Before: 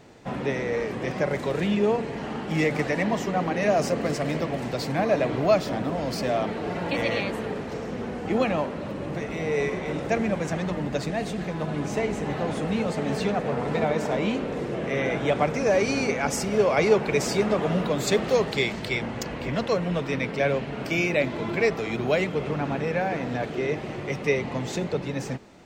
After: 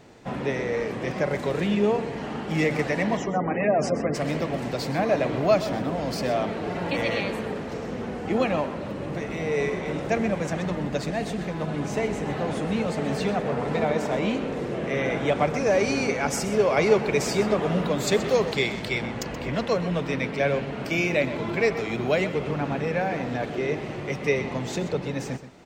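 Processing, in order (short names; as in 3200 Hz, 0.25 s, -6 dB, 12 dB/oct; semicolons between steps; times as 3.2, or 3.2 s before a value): 3.17–4.15 spectral gate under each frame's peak -25 dB strong; echo 0.127 s -13.5 dB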